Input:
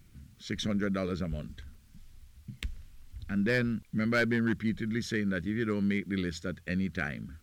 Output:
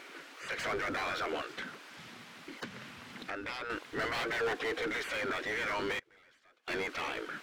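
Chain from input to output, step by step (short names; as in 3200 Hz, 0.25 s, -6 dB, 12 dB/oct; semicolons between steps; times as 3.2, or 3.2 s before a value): spectral gate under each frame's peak -20 dB weak; high shelf 6200 Hz -11 dB; 2.63–3.7 compressor 4:1, threshold -58 dBFS, peak gain reduction 15.5 dB; 4.4–4.88 small resonant body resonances 470/730 Hz, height 12 dB; overdrive pedal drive 32 dB, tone 1700 Hz, clips at -26 dBFS; 5.99–6.68 flipped gate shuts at -37 dBFS, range -27 dB; gain +2 dB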